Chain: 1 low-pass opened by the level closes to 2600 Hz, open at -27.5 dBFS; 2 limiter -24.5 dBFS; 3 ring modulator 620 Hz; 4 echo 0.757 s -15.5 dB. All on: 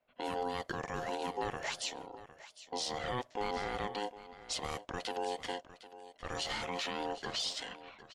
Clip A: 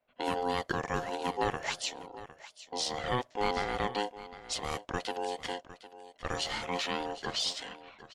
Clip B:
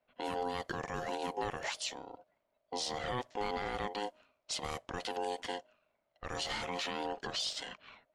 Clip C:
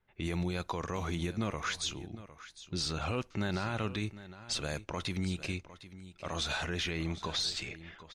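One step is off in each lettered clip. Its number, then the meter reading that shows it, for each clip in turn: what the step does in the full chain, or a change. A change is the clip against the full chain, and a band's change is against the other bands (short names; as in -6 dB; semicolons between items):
2, mean gain reduction 2.5 dB; 4, momentary loudness spread change -6 LU; 3, crest factor change -2.5 dB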